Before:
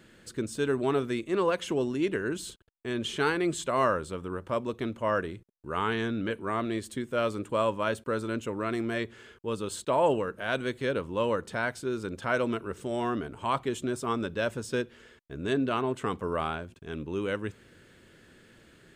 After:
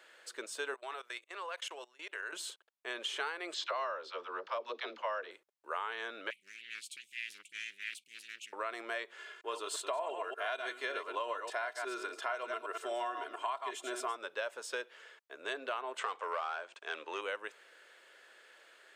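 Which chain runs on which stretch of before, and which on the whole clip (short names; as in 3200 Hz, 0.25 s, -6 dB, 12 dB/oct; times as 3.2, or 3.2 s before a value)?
0.74–2.33 gate -42 dBFS, range -13 dB + HPF 1100 Hz 6 dB/oct + level quantiser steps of 20 dB
3.54–5.31 resonant high shelf 6700 Hz -12 dB, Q 3 + dispersion lows, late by 79 ms, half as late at 360 Hz
6.3–8.53 brick-wall FIR band-stop 210–2200 Hz + Doppler distortion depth 0.54 ms
9.18–14.17 reverse delay 0.116 s, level -7 dB + comb 2.9 ms, depth 64%
15.98–17.21 overdrive pedal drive 13 dB, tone 6400 Hz, clips at -18 dBFS + brick-wall FIR low-pass 9300 Hz
whole clip: HPF 570 Hz 24 dB/oct; high shelf 5700 Hz -6.5 dB; compressor 10:1, threshold -35 dBFS; gain +1.5 dB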